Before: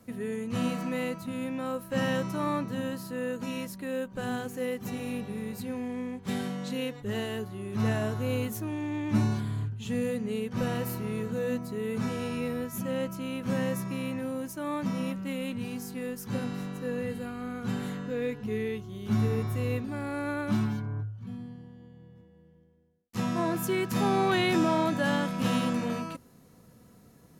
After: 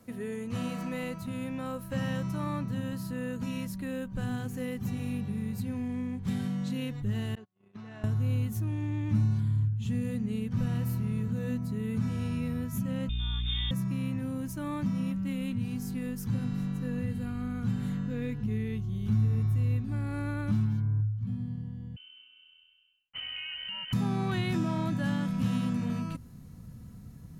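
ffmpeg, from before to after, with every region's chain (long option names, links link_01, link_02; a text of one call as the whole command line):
ffmpeg -i in.wav -filter_complex "[0:a]asettb=1/sr,asplit=3[link_01][link_02][link_03];[link_01]atrim=end=7.354[link_04];[link_02]atrim=start=7.35:end=8.04,asetpts=PTS-STARTPTS,afade=type=in:duration=0.004:curve=qsin,afade=type=out:start_time=0.686:duration=0.004:curve=qsin,agate=range=-41dB:threshold=-34dB:ratio=16:release=100:detection=peak,acompressor=threshold=-37dB:ratio=10:attack=3.2:release=140:knee=1:detection=peak,highpass=340,lowpass=4300[link_05];[link_03]atrim=start=8.036[link_06];[link_04][link_05]acrossfade=duration=0.004:curve1=hsin:curve2=qsin[link_07];[link_07][link_06]acrossfade=duration=0.004:curve1=qsin:curve2=hsin,asettb=1/sr,asplit=3[link_08][link_09][link_10];[link_08]atrim=end=13.094[link_11];[link_09]atrim=start=13.09:end=13.71,asetpts=PTS-STARTPTS,afade=type=in:duration=0.004:curve=qsin,afade=type=out:start_time=0.616:duration=0.004:curve=qsin,lowpass=frequency=3200:width_type=q:width=0.5098,lowpass=frequency=3200:width_type=q:width=0.6013,lowpass=frequency=3200:width_type=q:width=0.9,lowpass=frequency=3200:width_type=q:width=2.563,afreqshift=-3800,aeval=exprs='val(0)+0.01*(sin(2*PI*60*n/s)+sin(2*PI*2*60*n/s)/2+sin(2*PI*3*60*n/s)/3+sin(2*PI*4*60*n/s)/4+sin(2*PI*5*60*n/s)/5)':channel_layout=same[link_12];[link_10]atrim=start=13.706[link_13];[link_11][link_12]acrossfade=duration=0.004:curve1=hsin:curve2=qsin[link_14];[link_14][link_13]acrossfade=duration=0.004:curve1=qsin:curve2=hsin,asettb=1/sr,asplit=3[link_15][link_16][link_17];[link_15]atrim=end=21.964[link_18];[link_16]atrim=start=21.96:end=23.93,asetpts=PTS-STARTPTS,afade=type=in:duration=0.004:curve=qsin,afade=type=out:start_time=1.966:duration=0.004:curve=qsin,lowpass=frequency=2700:width_type=q:width=0.5098,lowpass=frequency=2700:width_type=q:width=0.6013,lowpass=frequency=2700:width_type=q:width=0.9,lowpass=frequency=2700:width_type=q:width=2.563,afreqshift=-3200,acompressor=threshold=-34dB:ratio=6:attack=3.2:release=140:knee=1:detection=peak[link_19];[link_17]atrim=start=23.926[link_20];[link_18][link_19]acrossfade=duration=0.004:curve1=hsin:curve2=qsin[link_21];[link_21][link_20]acrossfade=duration=0.004:curve1=qsin:curve2=hsin,asubboost=boost=8.5:cutoff=150,acompressor=threshold=-31dB:ratio=2,volume=-1dB" out.wav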